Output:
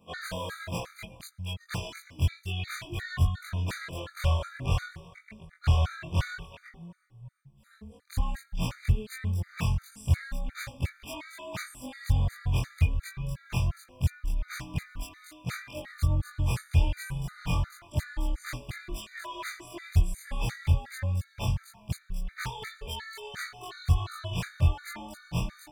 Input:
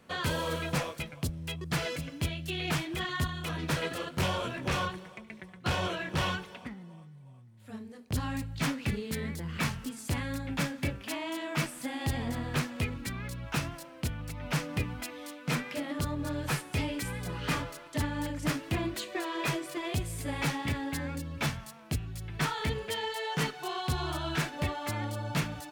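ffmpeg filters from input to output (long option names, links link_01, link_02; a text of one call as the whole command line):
ffmpeg -i in.wav -af "afftfilt=real='re':imag='-im':win_size=2048:overlap=0.75,asubboost=boost=10.5:cutoff=78,afftfilt=real='re*gt(sin(2*PI*2.8*pts/sr)*(1-2*mod(floor(b*sr/1024/1200),2)),0)':imag='im*gt(sin(2*PI*2.8*pts/sr)*(1-2*mod(floor(b*sr/1024/1200),2)),0)':win_size=1024:overlap=0.75,volume=3.5dB" out.wav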